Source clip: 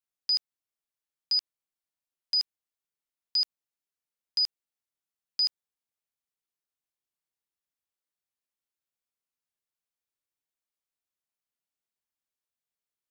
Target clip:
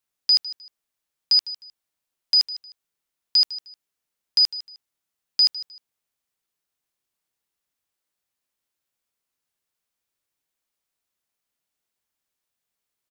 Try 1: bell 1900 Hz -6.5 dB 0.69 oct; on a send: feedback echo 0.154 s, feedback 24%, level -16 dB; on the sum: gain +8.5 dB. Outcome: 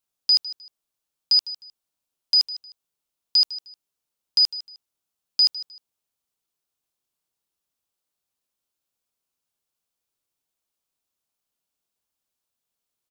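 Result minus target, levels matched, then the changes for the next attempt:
2000 Hz band -3.5 dB
remove: bell 1900 Hz -6.5 dB 0.69 oct

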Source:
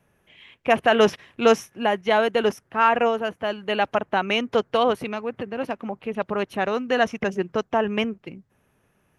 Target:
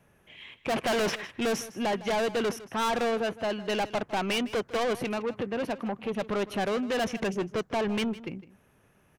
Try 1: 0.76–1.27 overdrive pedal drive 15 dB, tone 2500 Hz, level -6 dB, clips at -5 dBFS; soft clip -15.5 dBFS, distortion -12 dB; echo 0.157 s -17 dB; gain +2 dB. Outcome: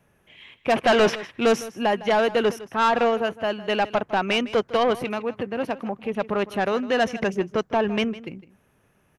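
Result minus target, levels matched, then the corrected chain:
soft clip: distortion -8 dB
0.76–1.27 overdrive pedal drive 15 dB, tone 2500 Hz, level -6 dB, clips at -5 dBFS; soft clip -27 dBFS, distortion -4 dB; echo 0.157 s -17 dB; gain +2 dB

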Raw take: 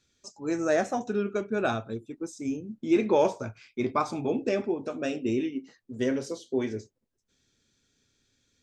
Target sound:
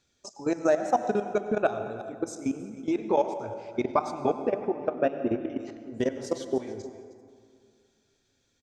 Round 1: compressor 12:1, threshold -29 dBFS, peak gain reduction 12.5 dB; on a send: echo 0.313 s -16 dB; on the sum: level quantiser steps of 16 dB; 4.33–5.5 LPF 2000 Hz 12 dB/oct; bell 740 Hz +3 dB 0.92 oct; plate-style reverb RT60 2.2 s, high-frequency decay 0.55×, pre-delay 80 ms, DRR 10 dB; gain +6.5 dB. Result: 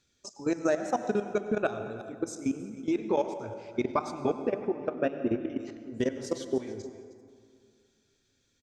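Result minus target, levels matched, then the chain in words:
1000 Hz band -2.5 dB
compressor 12:1, threshold -29 dBFS, peak gain reduction 12.5 dB; on a send: echo 0.313 s -16 dB; on the sum: level quantiser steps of 16 dB; 4.33–5.5 LPF 2000 Hz 12 dB/oct; bell 740 Hz +9.5 dB 0.92 oct; plate-style reverb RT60 2.2 s, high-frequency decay 0.55×, pre-delay 80 ms, DRR 10 dB; gain +6.5 dB

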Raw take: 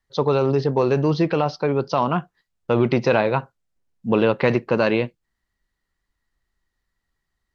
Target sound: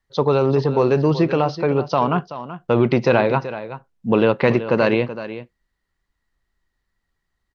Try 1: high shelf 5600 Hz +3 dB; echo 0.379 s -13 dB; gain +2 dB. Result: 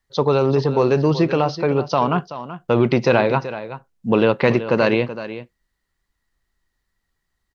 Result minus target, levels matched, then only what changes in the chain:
8000 Hz band +4.0 dB
change: high shelf 5600 Hz -5 dB

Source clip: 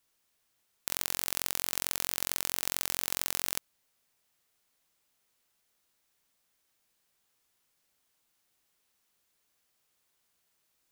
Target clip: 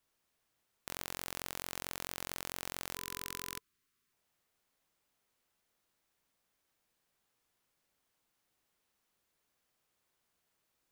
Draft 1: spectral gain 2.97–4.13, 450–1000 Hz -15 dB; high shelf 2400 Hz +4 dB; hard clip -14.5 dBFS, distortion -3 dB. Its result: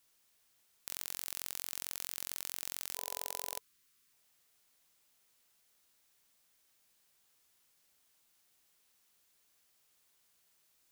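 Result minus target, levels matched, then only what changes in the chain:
2000 Hz band -7.0 dB
change: high shelf 2400 Hz -7 dB

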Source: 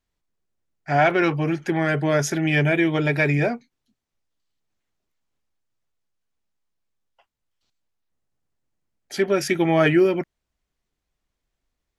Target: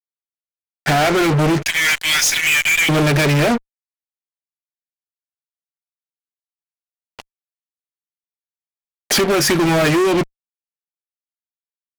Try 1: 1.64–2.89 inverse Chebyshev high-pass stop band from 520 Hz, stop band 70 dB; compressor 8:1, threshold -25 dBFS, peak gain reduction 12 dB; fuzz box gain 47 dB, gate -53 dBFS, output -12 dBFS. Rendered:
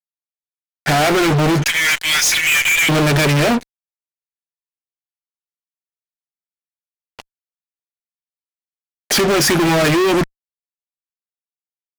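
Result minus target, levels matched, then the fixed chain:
compressor: peak gain reduction -7.5 dB
1.64–2.89 inverse Chebyshev high-pass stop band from 520 Hz, stop band 70 dB; compressor 8:1, threshold -33.5 dBFS, peak gain reduction 19.5 dB; fuzz box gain 47 dB, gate -53 dBFS, output -12 dBFS

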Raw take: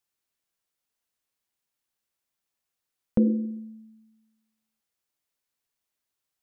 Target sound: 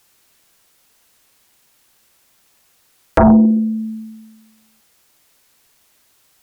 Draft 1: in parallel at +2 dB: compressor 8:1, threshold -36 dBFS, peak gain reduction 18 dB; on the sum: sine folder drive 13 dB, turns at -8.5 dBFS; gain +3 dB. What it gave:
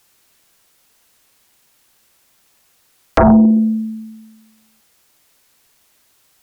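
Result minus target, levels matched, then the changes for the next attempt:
compressor: peak gain reduction -9.5 dB
change: compressor 8:1, threshold -47 dBFS, peak gain reduction 28 dB

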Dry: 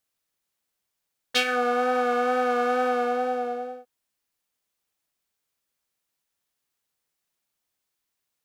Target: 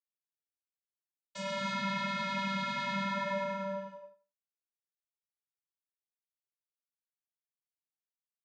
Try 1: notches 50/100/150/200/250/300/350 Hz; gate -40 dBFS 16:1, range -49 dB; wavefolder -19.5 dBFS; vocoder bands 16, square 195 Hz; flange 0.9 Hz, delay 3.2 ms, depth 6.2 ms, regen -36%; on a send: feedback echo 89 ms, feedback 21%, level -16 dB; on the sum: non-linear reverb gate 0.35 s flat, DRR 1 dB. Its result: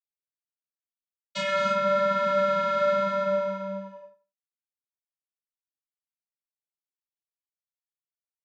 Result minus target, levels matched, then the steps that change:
wavefolder: distortion -21 dB
change: wavefolder -27.5 dBFS

